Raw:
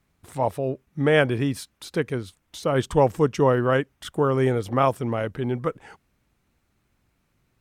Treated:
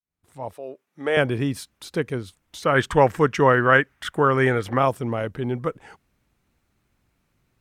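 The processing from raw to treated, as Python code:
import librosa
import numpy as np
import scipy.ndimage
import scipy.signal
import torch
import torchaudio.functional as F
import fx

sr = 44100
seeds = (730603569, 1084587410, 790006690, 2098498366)

y = fx.fade_in_head(x, sr, length_s=1.3)
y = fx.highpass(y, sr, hz=410.0, slope=12, at=(0.53, 1.17))
y = fx.peak_eq(y, sr, hz=1700.0, db=12.5, octaves=1.3, at=(2.62, 4.78))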